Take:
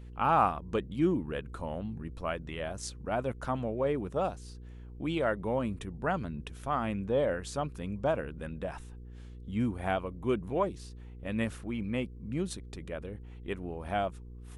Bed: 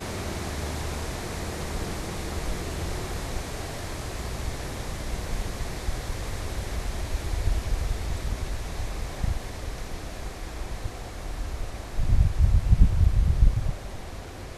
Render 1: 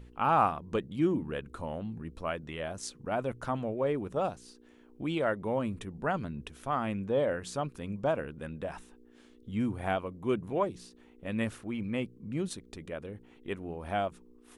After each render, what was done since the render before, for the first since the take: de-hum 60 Hz, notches 3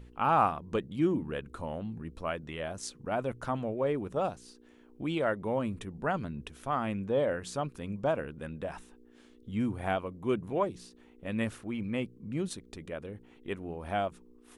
no audible change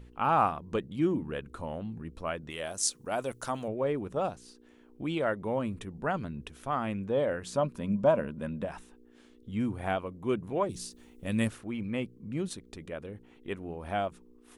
2.50–3.68 s: tone controls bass -6 dB, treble +14 dB; 7.53–8.65 s: small resonant body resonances 210/590/980 Hz, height 10 dB; 10.69–11.48 s: tone controls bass +6 dB, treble +14 dB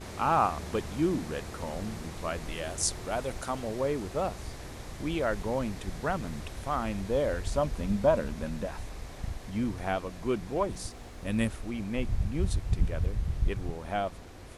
add bed -9 dB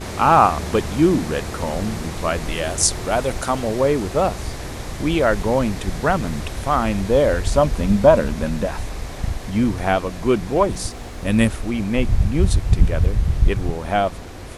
trim +12 dB; peak limiter -1 dBFS, peak gain reduction 2 dB

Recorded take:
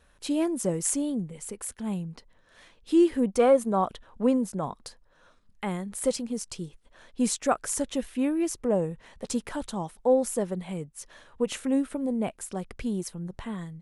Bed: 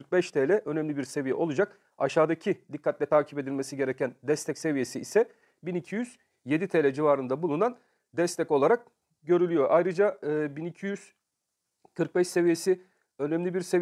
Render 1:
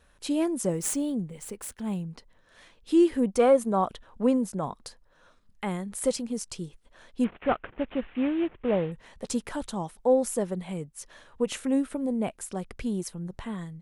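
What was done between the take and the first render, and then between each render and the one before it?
0.70–2.04 s: median filter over 3 samples; 7.24–8.92 s: CVSD coder 16 kbps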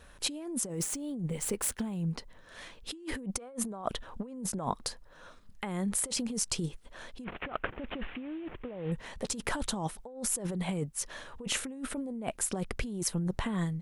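compressor with a negative ratio -36 dBFS, ratio -1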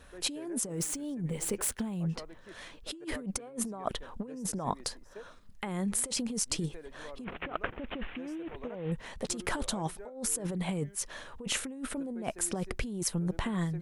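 add bed -24.5 dB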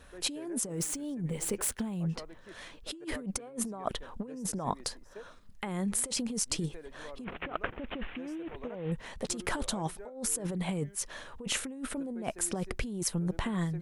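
no audible change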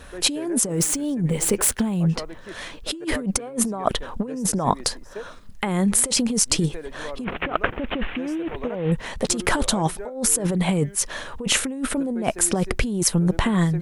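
trim +12 dB

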